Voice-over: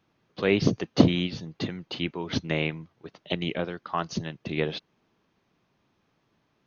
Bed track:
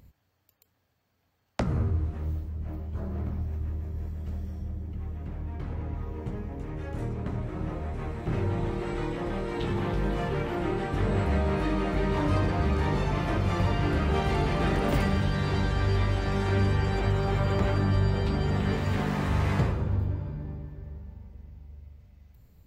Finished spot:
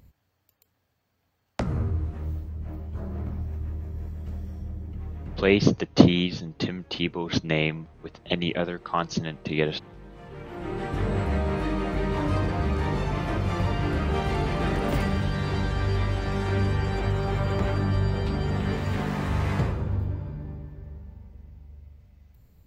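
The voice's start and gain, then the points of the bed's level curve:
5.00 s, +3.0 dB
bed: 5.48 s 0 dB
5.85 s -18 dB
10.1 s -18 dB
10.85 s 0 dB

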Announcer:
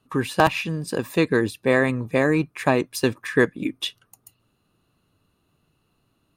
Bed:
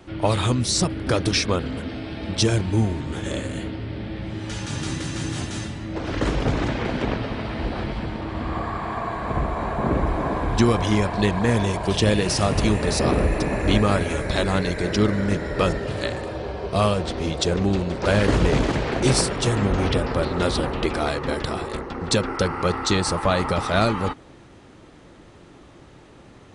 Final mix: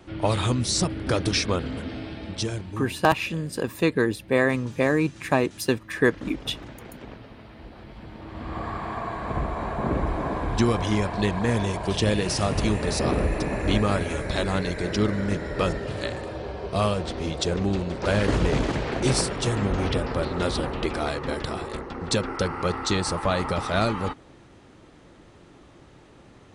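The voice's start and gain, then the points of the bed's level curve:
2.65 s, -2.0 dB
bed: 2.03 s -2.5 dB
3.01 s -17 dB
7.8 s -17 dB
8.68 s -3.5 dB

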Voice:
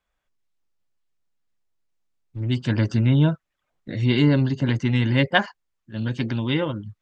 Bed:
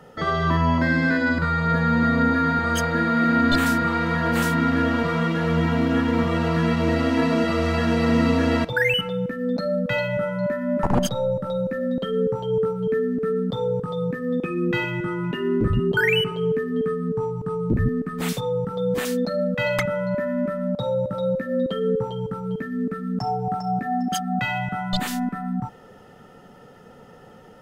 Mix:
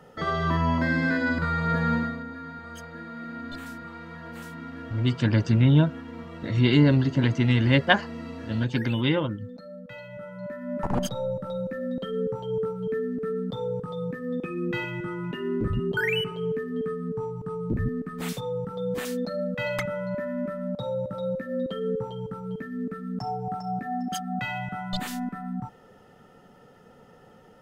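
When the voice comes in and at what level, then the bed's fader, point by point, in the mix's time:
2.55 s, -0.5 dB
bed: 1.94 s -4 dB
2.24 s -18.5 dB
9.97 s -18.5 dB
10.91 s -6 dB

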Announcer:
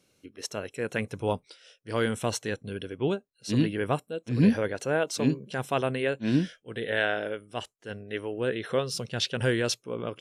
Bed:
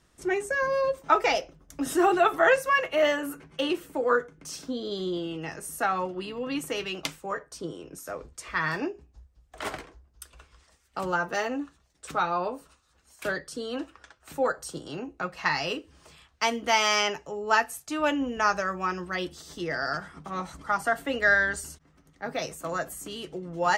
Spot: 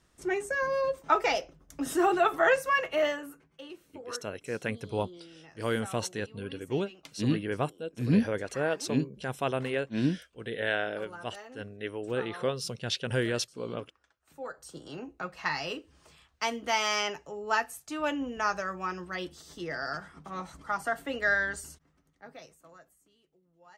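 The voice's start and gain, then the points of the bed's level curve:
3.70 s, -3.0 dB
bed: 2.98 s -3 dB
3.58 s -18 dB
14.26 s -18 dB
14.88 s -5 dB
21.74 s -5 dB
23.24 s -32.5 dB

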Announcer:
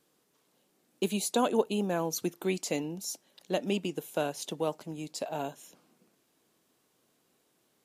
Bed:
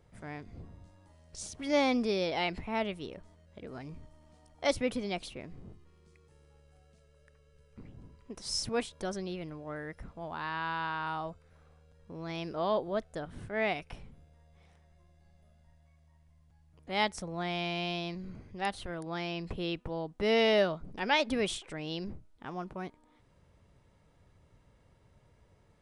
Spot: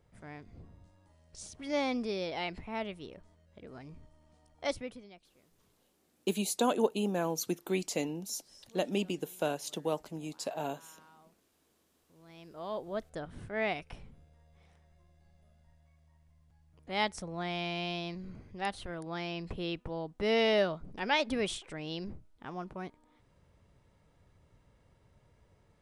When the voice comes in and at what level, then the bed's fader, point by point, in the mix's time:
5.25 s, -1.5 dB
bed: 4.69 s -4.5 dB
5.27 s -24.5 dB
11.88 s -24.5 dB
13.07 s -1.5 dB

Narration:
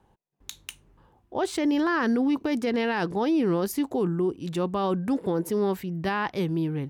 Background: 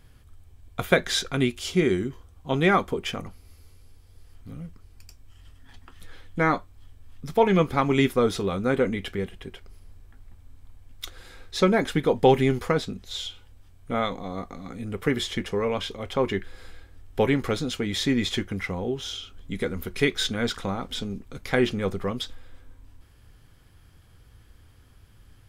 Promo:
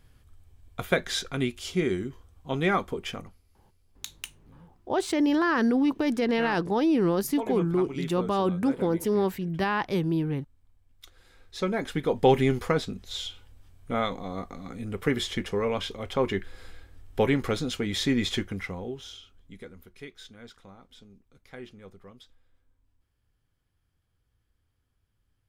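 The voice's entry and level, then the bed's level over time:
3.55 s, +0.5 dB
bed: 3.17 s -4.5 dB
3.47 s -15.5 dB
10.88 s -15.5 dB
12.35 s -1.5 dB
18.4 s -1.5 dB
20.07 s -21 dB

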